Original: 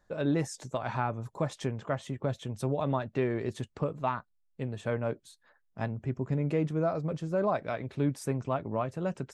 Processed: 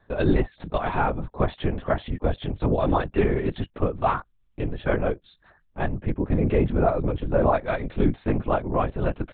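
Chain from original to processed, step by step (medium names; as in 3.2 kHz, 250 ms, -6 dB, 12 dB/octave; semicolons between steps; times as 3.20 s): LPC vocoder at 8 kHz whisper; trim +8 dB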